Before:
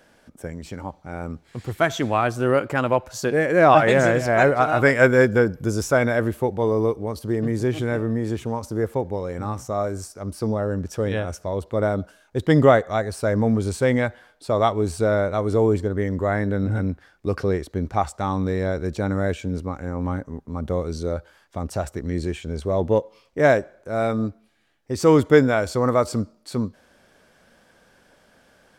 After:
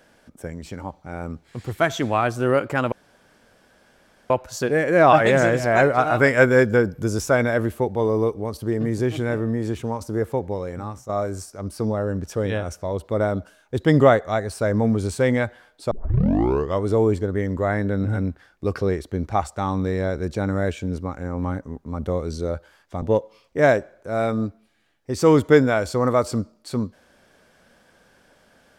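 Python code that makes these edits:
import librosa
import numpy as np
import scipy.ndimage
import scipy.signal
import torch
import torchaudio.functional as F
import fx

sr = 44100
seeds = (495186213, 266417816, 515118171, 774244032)

y = fx.edit(x, sr, fx.insert_room_tone(at_s=2.92, length_s=1.38),
    fx.fade_out_to(start_s=9.21, length_s=0.5, floor_db=-9.5),
    fx.tape_start(start_s=14.53, length_s=0.93),
    fx.cut(start_s=21.64, length_s=1.19), tone=tone)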